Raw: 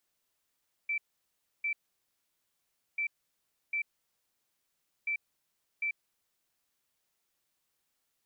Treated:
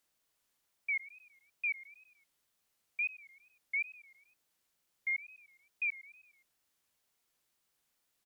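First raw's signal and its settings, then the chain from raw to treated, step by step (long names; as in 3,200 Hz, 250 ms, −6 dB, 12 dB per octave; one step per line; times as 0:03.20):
beeps in groups sine 2,330 Hz, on 0.09 s, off 0.66 s, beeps 2, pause 1.25 s, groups 3, −29 dBFS
repeating echo 103 ms, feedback 55%, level −17.5 dB
tape wow and flutter 150 cents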